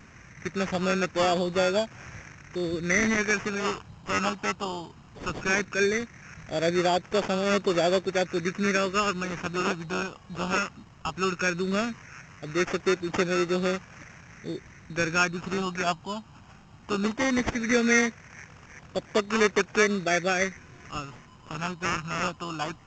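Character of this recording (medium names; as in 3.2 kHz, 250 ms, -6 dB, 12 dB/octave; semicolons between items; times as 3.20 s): phasing stages 6, 0.17 Hz, lowest notch 460–1400 Hz; aliases and images of a low sample rate 4 kHz, jitter 0%; G.722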